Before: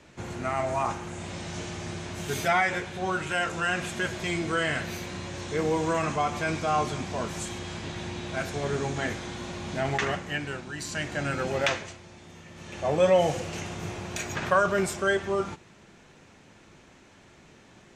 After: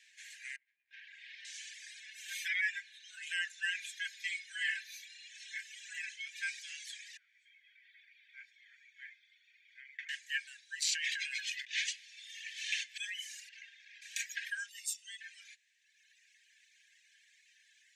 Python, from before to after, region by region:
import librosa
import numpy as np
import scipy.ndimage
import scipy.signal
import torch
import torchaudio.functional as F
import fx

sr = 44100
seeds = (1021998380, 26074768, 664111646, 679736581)

y = fx.chain(x, sr, fx.air_absorb(metres=340.0),
    fx.over_compress(threshold_db=-37.0, ratio=-0.5), at=(0.56, 1.45))
y = fx.chain(y, sr, fx.high_shelf(hz=6700.0, db=-8.5),
    fx.notch(hz=4600.0, q=29.0),
    fx.comb(ms=4.6, depth=0.51), at=(2.0, 6.43))
y = fx.chain(y, sr, fx.lowpass(hz=1100.0, slope=12),
    fx.comb(ms=0.9, depth=0.66), at=(7.17, 10.09))
y = fx.chain(y, sr, fx.weighting(curve='D'),
    fx.over_compress(threshold_db=-31.0, ratio=-1.0), at=(10.82, 12.98))
y = fx.chain(y, sr, fx.clip_hard(threshold_db=-33.0),
    fx.air_absorb(metres=140.0), at=(13.49, 14.02))
y = fx.chain(y, sr, fx.fixed_phaser(hz=440.0, stages=6),
    fx.comb(ms=1.1, depth=0.63), at=(14.69, 15.21))
y = fx.dereverb_blind(y, sr, rt60_s=1.7)
y = scipy.signal.sosfilt(scipy.signal.cheby1(10, 1.0, 1600.0, 'highpass', fs=sr, output='sos'), y)
y = y * 10.0 ** (-2.5 / 20.0)